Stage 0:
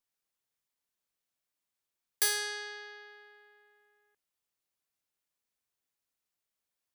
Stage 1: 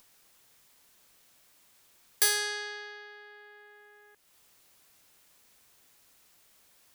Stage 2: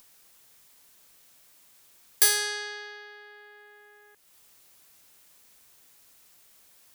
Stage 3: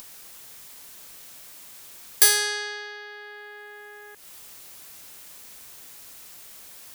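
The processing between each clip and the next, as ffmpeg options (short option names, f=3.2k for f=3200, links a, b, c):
-af "acompressor=mode=upward:threshold=-48dB:ratio=2.5,volume=3.5dB"
-af "highshelf=f=6k:g=4.5,volume=1.5dB"
-af "acompressor=mode=upward:threshold=-39dB:ratio=2.5,volume=4dB"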